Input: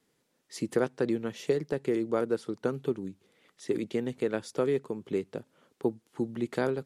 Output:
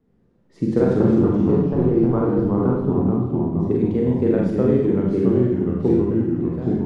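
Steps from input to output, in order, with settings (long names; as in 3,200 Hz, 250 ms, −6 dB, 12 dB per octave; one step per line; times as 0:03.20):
fade-out on the ending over 1.03 s
0:00.92–0:03.71: octave-band graphic EQ 500/1,000/2,000/4,000/8,000 Hz −6/+11/−8/−4/−9 dB
delay with pitch and tempo change per echo 105 ms, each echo −2 semitones, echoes 3
spectral tilt −4.5 dB per octave
four-comb reverb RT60 0.77 s, combs from 32 ms, DRR −2 dB
one half of a high-frequency compander decoder only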